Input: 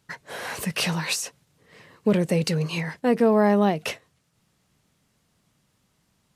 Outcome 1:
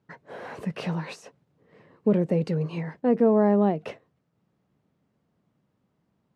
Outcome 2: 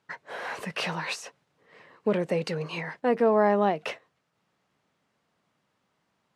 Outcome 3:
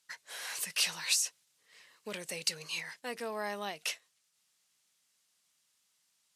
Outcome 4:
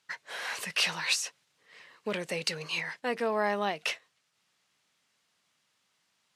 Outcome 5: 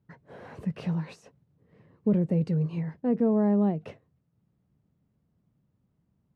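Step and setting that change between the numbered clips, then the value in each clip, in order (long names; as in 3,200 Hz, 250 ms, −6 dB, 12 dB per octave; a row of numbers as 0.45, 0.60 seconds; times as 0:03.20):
resonant band-pass, frequency: 310, 930, 7,900, 3,000, 110 Hertz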